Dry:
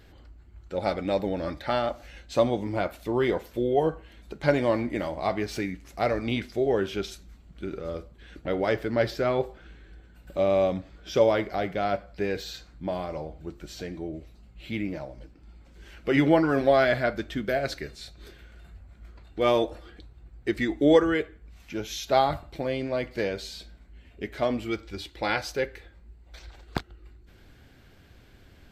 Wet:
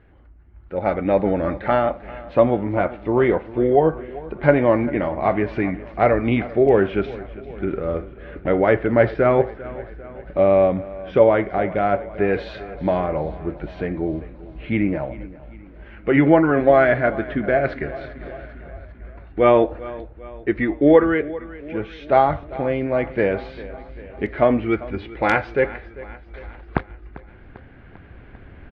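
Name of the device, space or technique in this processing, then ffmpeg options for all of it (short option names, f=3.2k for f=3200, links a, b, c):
action camera in a waterproof case: -filter_complex "[0:a]asettb=1/sr,asplit=3[a][b][c];[a]atrim=end=12.334[d];[b]atrim=start=12.33:end=13,asetpts=PTS-STARTPTS,afade=t=in:d=0.004:c=qsin,afade=t=out:st=0.666:d=0.004:c=qsin,highshelf=f=4k:g=12[e];[c]atrim=start=12.996[f];[d][e]acrossfade=d=0.004:c1=hsin:c2=qsin[g];[g][f]acrossfade=d=0.004:c1=qsin:c2=hsin,lowpass=f=2.3k:w=0.5412,lowpass=f=2.3k:w=1.3066,aecho=1:1:396|792|1188|1584|1980:0.126|0.073|0.0424|0.0246|0.0142,dynaudnorm=f=250:g=7:m=11dB" -ar 32000 -c:a aac -b:a 64k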